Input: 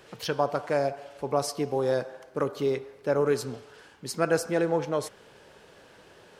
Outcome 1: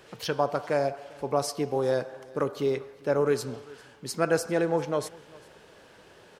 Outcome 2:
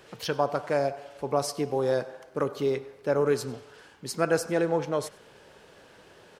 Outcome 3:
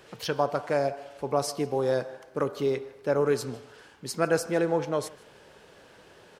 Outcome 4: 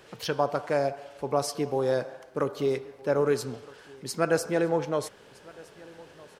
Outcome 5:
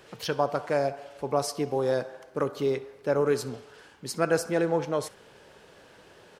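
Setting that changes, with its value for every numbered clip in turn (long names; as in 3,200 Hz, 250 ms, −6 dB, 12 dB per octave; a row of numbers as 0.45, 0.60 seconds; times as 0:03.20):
repeating echo, delay time: 398, 98, 154, 1,263, 66 milliseconds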